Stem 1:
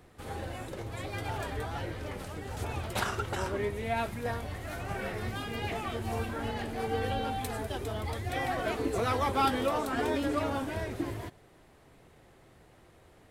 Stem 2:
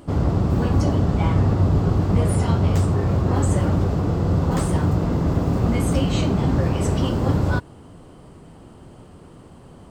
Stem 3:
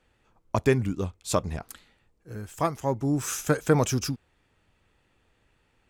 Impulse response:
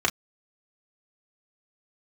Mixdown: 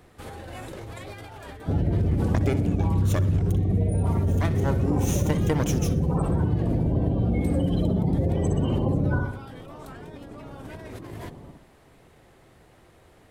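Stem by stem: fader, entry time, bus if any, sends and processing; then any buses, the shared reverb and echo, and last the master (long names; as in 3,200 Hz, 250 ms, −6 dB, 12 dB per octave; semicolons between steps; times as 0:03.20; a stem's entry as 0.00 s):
−1.5 dB, 0.00 s, no send, no echo send, brickwall limiter −23.5 dBFS, peak gain reduction 8 dB; compressor whose output falls as the input rises −40 dBFS, ratio −1
−1.5 dB, 1.60 s, no send, echo send −3.5 dB, gate on every frequency bin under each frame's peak −20 dB strong
+2.5 dB, 1.80 s, no send, echo send −16 dB, lower of the sound and its delayed copy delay 0.31 ms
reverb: not used
echo: repeating echo 62 ms, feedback 45%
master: downward compressor, threshold −19 dBFS, peak gain reduction 9 dB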